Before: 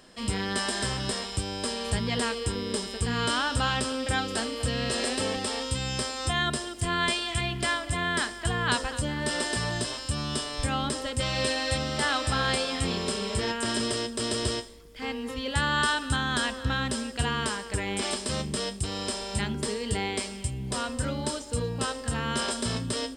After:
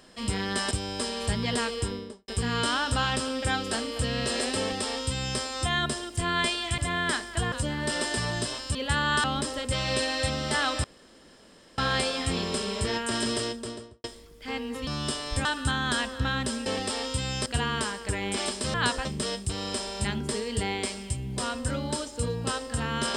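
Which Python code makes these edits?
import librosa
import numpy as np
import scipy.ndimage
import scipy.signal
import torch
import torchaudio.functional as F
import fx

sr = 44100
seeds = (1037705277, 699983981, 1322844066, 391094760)

y = fx.studio_fade_out(x, sr, start_s=2.43, length_s=0.49)
y = fx.studio_fade_out(y, sr, start_s=13.93, length_s=0.65)
y = fx.edit(y, sr, fx.cut(start_s=0.71, length_s=0.64),
    fx.duplicate(start_s=5.23, length_s=0.8, to_s=17.11),
    fx.cut(start_s=7.42, length_s=0.44),
    fx.move(start_s=8.6, length_s=0.31, to_s=18.39),
    fx.swap(start_s=10.14, length_s=0.58, other_s=15.41, other_length_s=0.49),
    fx.insert_room_tone(at_s=12.32, length_s=0.94), tone=tone)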